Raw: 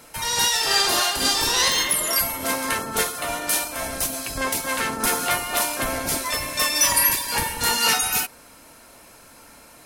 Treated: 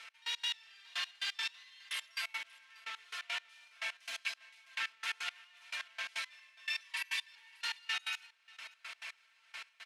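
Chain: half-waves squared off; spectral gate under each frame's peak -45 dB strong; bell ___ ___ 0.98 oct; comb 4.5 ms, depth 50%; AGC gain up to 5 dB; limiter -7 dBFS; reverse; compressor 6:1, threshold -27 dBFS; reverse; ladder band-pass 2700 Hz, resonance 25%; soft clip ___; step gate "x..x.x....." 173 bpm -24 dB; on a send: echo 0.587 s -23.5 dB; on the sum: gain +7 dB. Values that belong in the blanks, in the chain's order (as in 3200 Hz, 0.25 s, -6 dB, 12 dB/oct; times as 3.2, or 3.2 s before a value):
2800 Hz, +5 dB, -30 dBFS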